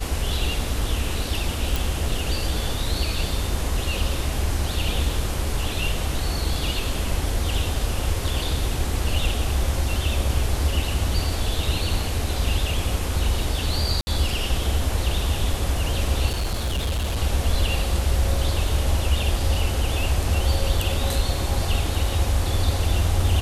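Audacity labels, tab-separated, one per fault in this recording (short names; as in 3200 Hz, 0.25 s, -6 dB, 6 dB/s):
1.760000	1.760000	pop
14.010000	14.070000	gap 60 ms
16.290000	17.190000	clipped -20.5 dBFS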